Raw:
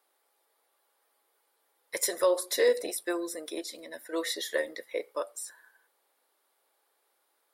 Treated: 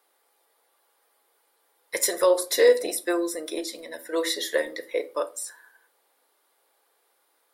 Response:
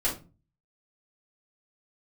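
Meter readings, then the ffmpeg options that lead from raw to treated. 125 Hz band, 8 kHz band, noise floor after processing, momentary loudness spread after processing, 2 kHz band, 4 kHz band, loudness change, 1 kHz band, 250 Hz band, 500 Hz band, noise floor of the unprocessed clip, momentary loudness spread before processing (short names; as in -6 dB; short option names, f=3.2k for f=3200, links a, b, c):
n/a, +5.0 dB, -69 dBFS, 15 LU, +5.0 dB, +5.5 dB, +6.0 dB, +5.5 dB, +6.0 dB, +6.0 dB, -75 dBFS, 14 LU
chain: -filter_complex "[0:a]asplit=2[a][b];[1:a]atrim=start_sample=2205[c];[b][c]afir=irnorm=-1:irlink=0,volume=-17dB[d];[a][d]amix=inputs=2:normalize=0,volume=4dB"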